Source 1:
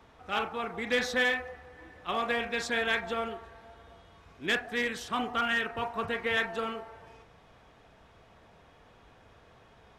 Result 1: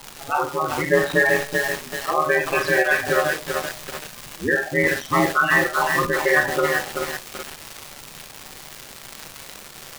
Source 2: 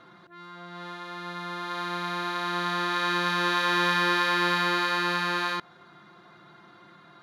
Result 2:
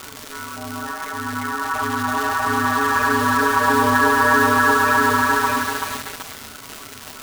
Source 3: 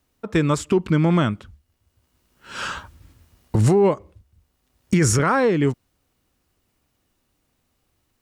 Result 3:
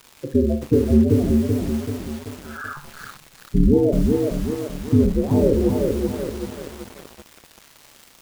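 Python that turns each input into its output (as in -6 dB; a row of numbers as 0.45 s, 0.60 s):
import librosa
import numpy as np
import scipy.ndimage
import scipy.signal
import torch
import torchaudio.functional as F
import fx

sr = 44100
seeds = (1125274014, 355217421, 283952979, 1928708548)

y = fx.dereverb_blind(x, sr, rt60_s=0.99)
y = fx.env_lowpass_down(y, sr, base_hz=500.0, full_db=-19.5)
y = fx.spec_topn(y, sr, count=8)
y = fx.dmg_crackle(y, sr, seeds[0], per_s=600.0, level_db=-38.0)
y = y * np.sin(2.0 * np.pi * 74.0 * np.arange(len(y)) / sr)
y = fx.rev_schroeder(y, sr, rt60_s=0.32, comb_ms=28, drr_db=5.5)
y = fx.echo_crushed(y, sr, ms=383, feedback_pct=55, bits=7, wet_db=-3)
y = y * 10.0 ** (-3 / 20.0) / np.max(np.abs(y))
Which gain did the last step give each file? +15.5 dB, +17.5 dB, +5.0 dB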